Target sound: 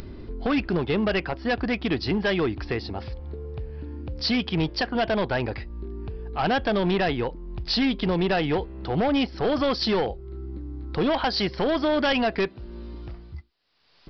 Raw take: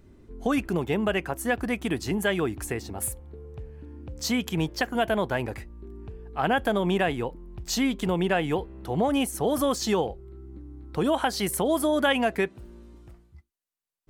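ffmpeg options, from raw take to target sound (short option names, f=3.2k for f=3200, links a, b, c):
-af "bass=f=250:g=-3,treble=f=4k:g=8,aresample=11025,asoftclip=type=hard:threshold=-23dB,aresample=44100,acompressor=mode=upward:threshold=-35dB:ratio=2.5,lowshelf=f=120:g=5.5,volume=3.5dB"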